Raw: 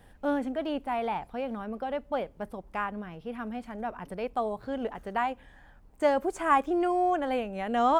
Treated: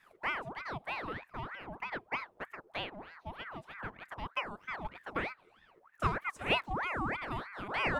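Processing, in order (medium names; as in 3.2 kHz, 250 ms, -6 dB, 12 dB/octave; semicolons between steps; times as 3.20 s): transient shaper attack +5 dB, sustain -2 dB; band-stop 650 Hz, Q 15; ring modulator with a swept carrier 1.1 kHz, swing 65%, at 3.2 Hz; trim -6.5 dB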